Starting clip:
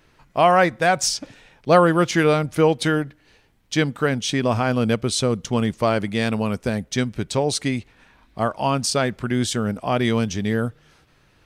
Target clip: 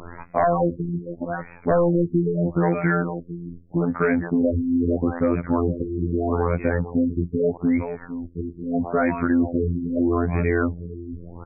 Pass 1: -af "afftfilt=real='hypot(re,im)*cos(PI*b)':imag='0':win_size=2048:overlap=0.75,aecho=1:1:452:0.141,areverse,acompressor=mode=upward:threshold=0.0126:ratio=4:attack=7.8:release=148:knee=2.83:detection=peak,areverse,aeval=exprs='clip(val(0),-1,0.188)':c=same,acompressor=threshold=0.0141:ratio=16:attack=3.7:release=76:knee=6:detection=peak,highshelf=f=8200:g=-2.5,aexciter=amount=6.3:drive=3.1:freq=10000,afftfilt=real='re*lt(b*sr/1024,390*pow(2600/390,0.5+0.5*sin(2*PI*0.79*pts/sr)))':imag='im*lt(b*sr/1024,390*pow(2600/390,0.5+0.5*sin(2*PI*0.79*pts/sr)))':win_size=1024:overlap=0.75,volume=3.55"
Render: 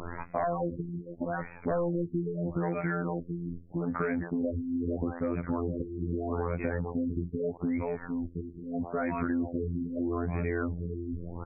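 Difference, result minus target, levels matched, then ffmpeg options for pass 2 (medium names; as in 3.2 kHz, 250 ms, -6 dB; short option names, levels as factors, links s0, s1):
compression: peak gain reduction +11 dB
-af "afftfilt=real='hypot(re,im)*cos(PI*b)':imag='0':win_size=2048:overlap=0.75,aecho=1:1:452:0.141,areverse,acompressor=mode=upward:threshold=0.0126:ratio=4:attack=7.8:release=148:knee=2.83:detection=peak,areverse,aeval=exprs='clip(val(0),-1,0.188)':c=same,acompressor=threshold=0.0531:ratio=16:attack=3.7:release=76:knee=6:detection=peak,highshelf=f=8200:g=-2.5,aexciter=amount=6.3:drive=3.1:freq=10000,afftfilt=real='re*lt(b*sr/1024,390*pow(2600/390,0.5+0.5*sin(2*PI*0.79*pts/sr)))':imag='im*lt(b*sr/1024,390*pow(2600/390,0.5+0.5*sin(2*PI*0.79*pts/sr)))':win_size=1024:overlap=0.75,volume=3.55"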